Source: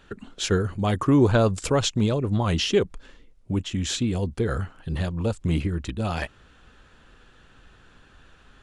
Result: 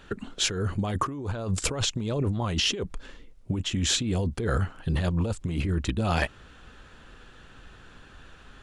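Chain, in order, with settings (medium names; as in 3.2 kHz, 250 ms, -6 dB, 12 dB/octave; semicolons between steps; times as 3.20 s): compressor with a negative ratio -27 dBFS, ratio -1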